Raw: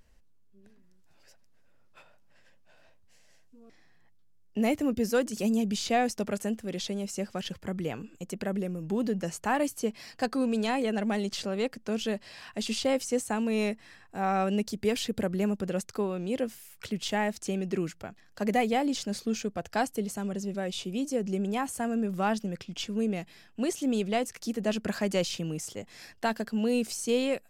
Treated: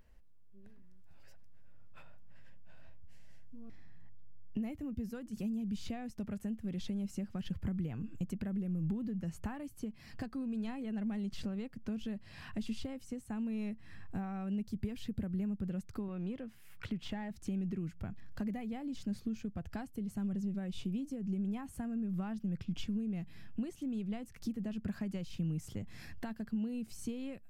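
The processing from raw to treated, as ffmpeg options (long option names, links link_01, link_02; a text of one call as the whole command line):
ffmpeg -i in.wav -filter_complex "[0:a]asettb=1/sr,asplit=3[link_01][link_02][link_03];[link_01]atrim=end=16.084[link_04];[link_02]atrim=start=16.08:end=17.31,asetpts=PTS-STARTPTS,afade=type=in:duration=0.004:curve=qsin,afade=type=out:start_time=1.226:duration=0.004:curve=qsin,asplit=2[link_05][link_06];[link_06]highpass=frequency=720:poles=1,volume=11dB,asoftclip=type=tanh:threshold=-18dB[link_07];[link_05][link_07]amix=inputs=2:normalize=0,lowpass=frequency=2100:poles=1,volume=-6dB[link_08];[link_03]atrim=start=17.306[link_09];[link_04][link_08]acrossfade=duration=0.004:curve1=hsin:curve2=qsin[link_10];[link_10][link_09]acrossfade=duration=0.004:curve1=qsin:curve2=hsin,equalizer=frequency=6600:width=0.62:gain=-8.5,acompressor=threshold=-41dB:ratio=6,asubboost=boost=8:cutoff=170,volume=-1.5dB" out.wav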